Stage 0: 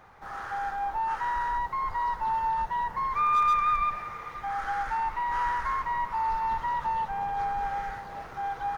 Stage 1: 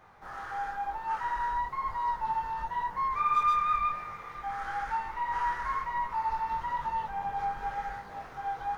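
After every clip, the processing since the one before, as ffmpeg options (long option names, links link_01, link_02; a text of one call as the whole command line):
ffmpeg -i in.wav -af "flanger=delay=19.5:depth=4.7:speed=0.99" out.wav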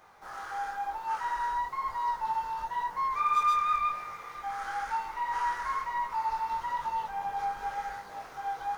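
ffmpeg -i in.wav -af "bass=frequency=250:gain=-8,treble=frequency=4000:gain=8,bandreject=frequency=1800:width=26" out.wav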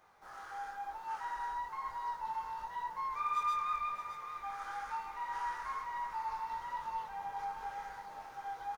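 ffmpeg -i in.wav -af "aecho=1:1:615|1230|1845|2460|3075|3690:0.282|0.158|0.0884|0.0495|0.0277|0.0155,volume=-8dB" out.wav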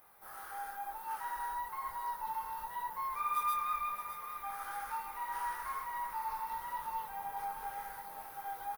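ffmpeg -i in.wav -af "aexciter=amount=13.1:drive=4.3:freq=9700" out.wav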